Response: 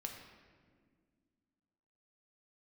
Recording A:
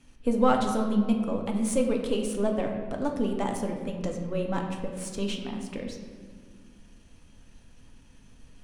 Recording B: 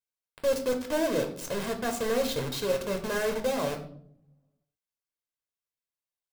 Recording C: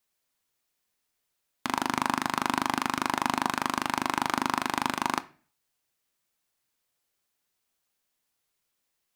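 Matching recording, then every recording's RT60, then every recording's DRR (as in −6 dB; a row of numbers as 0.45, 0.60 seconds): A; 1.8, 0.65, 0.40 seconds; 1.5, 4.0, 12.5 decibels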